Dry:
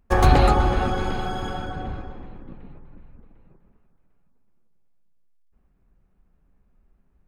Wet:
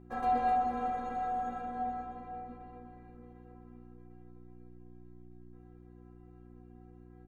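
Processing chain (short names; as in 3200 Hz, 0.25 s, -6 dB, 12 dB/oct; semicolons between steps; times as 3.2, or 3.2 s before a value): per-bin compression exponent 0.6; three-band isolator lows -12 dB, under 230 Hz, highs -15 dB, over 2000 Hz; metallic resonator 240 Hz, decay 0.44 s, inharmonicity 0.008; buzz 60 Hz, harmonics 6, -54 dBFS -1 dB/oct; on a send: echo 0.448 s -14.5 dB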